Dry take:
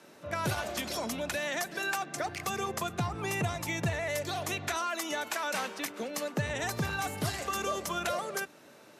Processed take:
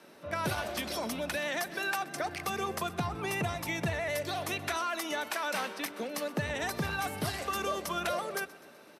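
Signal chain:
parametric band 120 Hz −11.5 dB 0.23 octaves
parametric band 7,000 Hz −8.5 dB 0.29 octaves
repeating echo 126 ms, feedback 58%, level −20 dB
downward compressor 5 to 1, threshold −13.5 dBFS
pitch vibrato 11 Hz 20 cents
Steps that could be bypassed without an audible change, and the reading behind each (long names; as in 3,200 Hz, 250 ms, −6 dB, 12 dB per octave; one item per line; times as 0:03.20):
downward compressor, threshold −13.5 dBFS: peak of its input −19.5 dBFS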